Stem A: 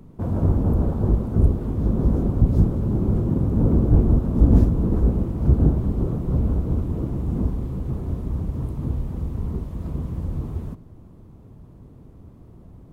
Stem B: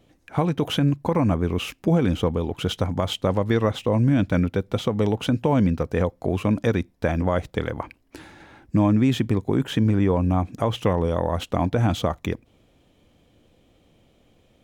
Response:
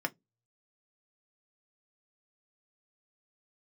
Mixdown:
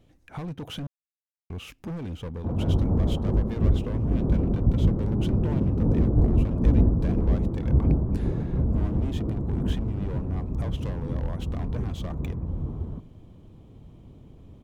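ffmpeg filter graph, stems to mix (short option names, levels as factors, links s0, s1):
-filter_complex "[0:a]asoftclip=type=tanh:threshold=0.501,lowpass=1200,adelay=2250,volume=0.708[s0];[1:a]volume=11.9,asoftclip=hard,volume=0.0841,lowshelf=f=160:g=10,acompressor=threshold=0.0251:ratio=2,volume=0.531,asplit=3[s1][s2][s3];[s1]atrim=end=0.87,asetpts=PTS-STARTPTS,afade=t=out:st=0.866:d=0.004:c=hsin[s4];[s2]atrim=start=0.87:end=1.5,asetpts=PTS-STARTPTS,volume=0[s5];[s3]atrim=start=1.5,asetpts=PTS-STARTPTS,afade=t=in:d=0.004:c=hsin[s6];[s4][s5][s6]concat=n=3:v=0:a=1[s7];[s0][s7]amix=inputs=2:normalize=0"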